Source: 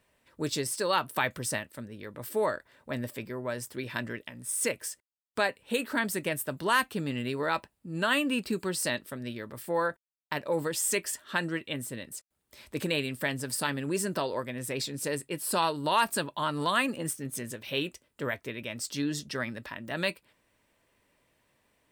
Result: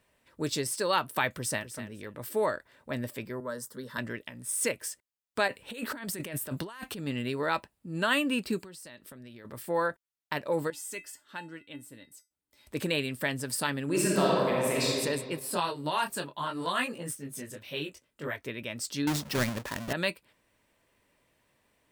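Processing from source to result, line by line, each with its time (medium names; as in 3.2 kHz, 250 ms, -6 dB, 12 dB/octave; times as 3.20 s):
1.33–1.74 s: echo throw 250 ms, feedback 15%, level -11.5 dB
3.40–3.98 s: static phaser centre 490 Hz, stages 8
5.48–7.07 s: compressor with a negative ratio -38 dBFS
8.59–9.45 s: compression 10:1, threshold -44 dBFS
10.70–12.67 s: feedback comb 290 Hz, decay 0.21 s, harmonics odd, mix 80%
13.85–14.87 s: reverb throw, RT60 2.1 s, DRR -5 dB
15.39–18.44 s: detune thickener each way 24 cents
19.07–19.93 s: square wave that keeps the level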